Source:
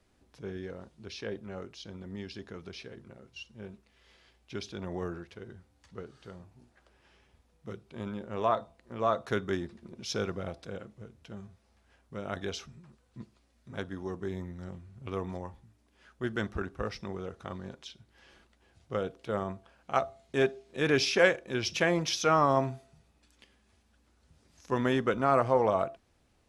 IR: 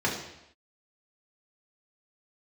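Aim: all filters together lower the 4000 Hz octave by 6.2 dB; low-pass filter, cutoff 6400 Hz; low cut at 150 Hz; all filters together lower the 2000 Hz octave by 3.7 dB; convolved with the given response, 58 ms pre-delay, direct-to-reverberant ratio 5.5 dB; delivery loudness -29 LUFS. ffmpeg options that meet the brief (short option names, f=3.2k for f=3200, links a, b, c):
-filter_complex "[0:a]highpass=150,lowpass=6.4k,equalizer=f=2k:t=o:g=-3.5,equalizer=f=4k:t=o:g=-6.5,asplit=2[a][b];[1:a]atrim=start_sample=2205,adelay=58[c];[b][c]afir=irnorm=-1:irlink=0,volume=-17dB[d];[a][d]amix=inputs=2:normalize=0,volume=2.5dB"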